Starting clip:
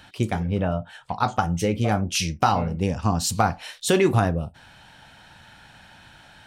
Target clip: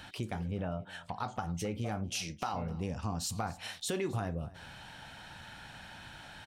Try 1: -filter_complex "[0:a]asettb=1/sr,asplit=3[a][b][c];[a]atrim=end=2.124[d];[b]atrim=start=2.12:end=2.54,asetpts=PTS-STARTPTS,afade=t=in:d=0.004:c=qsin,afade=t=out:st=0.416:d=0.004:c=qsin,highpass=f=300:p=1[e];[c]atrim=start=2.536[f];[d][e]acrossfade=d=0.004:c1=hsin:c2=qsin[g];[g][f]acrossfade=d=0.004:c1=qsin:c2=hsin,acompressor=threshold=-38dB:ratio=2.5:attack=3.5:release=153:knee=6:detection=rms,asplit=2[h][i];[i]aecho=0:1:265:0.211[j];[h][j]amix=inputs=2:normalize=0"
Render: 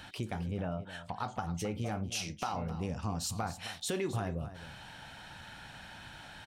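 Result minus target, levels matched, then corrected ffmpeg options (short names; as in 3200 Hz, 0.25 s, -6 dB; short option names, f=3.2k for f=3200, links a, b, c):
echo-to-direct +7 dB
-filter_complex "[0:a]asettb=1/sr,asplit=3[a][b][c];[a]atrim=end=2.124[d];[b]atrim=start=2.12:end=2.54,asetpts=PTS-STARTPTS,afade=t=in:d=0.004:c=qsin,afade=t=out:st=0.416:d=0.004:c=qsin,highpass=f=300:p=1[e];[c]atrim=start=2.536[f];[d][e]acrossfade=d=0.004:c1=hsin:c2=qsin[g];[g][f]acrossfade=d=0.004:c1=qsin:c2=hsin,acompressor=threshold=-38dB:ratio=2.5:attack=3.5:release=153:knee=6:detection=rms,asplit=2[h][i];[i]aecho=0:1:265:0.0944[j];[h][j]amix=inputs=2:normalize=0"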